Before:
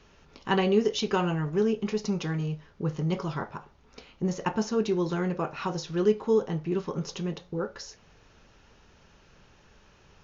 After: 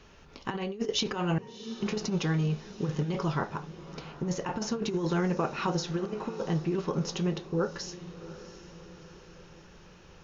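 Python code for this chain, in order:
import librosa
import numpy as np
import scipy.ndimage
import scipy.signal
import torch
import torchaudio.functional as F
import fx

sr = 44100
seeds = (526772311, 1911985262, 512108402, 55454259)

y = fx.octave_resonator(x, sr, note='A#', decay_s=0.64, at=(1.38, 1.8))
y = fx.over_compress(y, sr, threshold_db=-28.0, ratio=-0.5)
y = fx.echo_diffused(y, sr, ms=705, feedback_pct=51, wet_db=-15.0)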